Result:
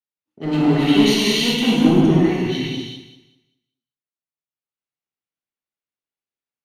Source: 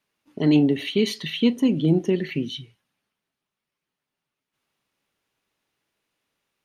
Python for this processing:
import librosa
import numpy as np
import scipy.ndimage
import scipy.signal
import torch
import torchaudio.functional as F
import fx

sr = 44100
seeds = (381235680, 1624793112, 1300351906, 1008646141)

p1 = fx.highpass(x, sr, hz=150.0, slope=6, at=(1.88, 2.3))
p2 = 10.0 ** (-19.5 / 20.0) * (np.abs((p1 / 10.0 ** (-19.5 / 20.0) + 3.0) % 4.0 - 2.0) - 1.0)
p3 = p1 + (p2 * librosa.db_to_amplitude(-4.0))
p4 = fx.echo_feedback(p3, sr, ms=195, feedback_pct=45, wet_db=-9.0)
p5 = fx.rev_gated(p4, sr, seeds[0], gate_ms=430, shape='flat', drr_db=-6.5)
p6 = fx.band_widen(p5, sr, depth_pct=70)
y = p6 * librosa.db_to_amplitude(-3.5)